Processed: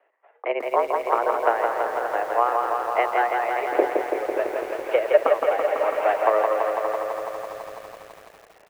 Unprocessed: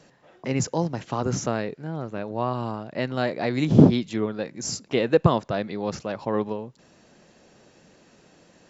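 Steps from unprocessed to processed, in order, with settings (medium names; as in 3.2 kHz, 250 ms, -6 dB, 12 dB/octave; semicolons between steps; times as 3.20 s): 4.37–6.14 s: jump at every zero crossing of -23.5 dBFS; level rider gain up to 11 dB; transient shaper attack +10 dB, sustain -12 dB; on a send: delay 575 ms -10 dB; on the sum: mistuned SSB +110 Hz 340–2400 Hz; bit-crushed delay 166 ms, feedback 80%, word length 7-bit, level -4 dB; trim -7.5 dB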